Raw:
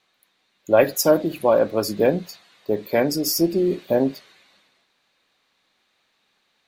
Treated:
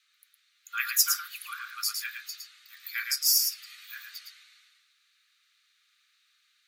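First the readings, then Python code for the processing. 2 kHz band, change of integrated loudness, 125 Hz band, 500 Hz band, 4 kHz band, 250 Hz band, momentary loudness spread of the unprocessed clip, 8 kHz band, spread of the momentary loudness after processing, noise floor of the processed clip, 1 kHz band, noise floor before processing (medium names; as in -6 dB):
-2.0 dB, -6.5 dB, under -40 dB, under -40 dB, +1.5 dB, under -40 dB, 9 LU, +2.5 dB, 21 LU, -70 dBFS, -13.5 dB, -69 dBFS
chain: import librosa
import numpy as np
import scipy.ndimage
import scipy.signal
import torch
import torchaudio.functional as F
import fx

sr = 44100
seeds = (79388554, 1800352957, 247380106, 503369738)

p1 = scipy.signal.sosfilt(scipy.signal.cheby1(8, 1.0, 1200.0, 'highpass', fs=sr, output='sos'), x)
p2 = fx.high_shelf(p1, sr, hz=3500.0, db=6.5)
p3 = p2 + fx.echo_single(p2, sr, ms=111, db=-5.0, dry=0)
y = p3 * librosa.db_to_amplitude(-4.0)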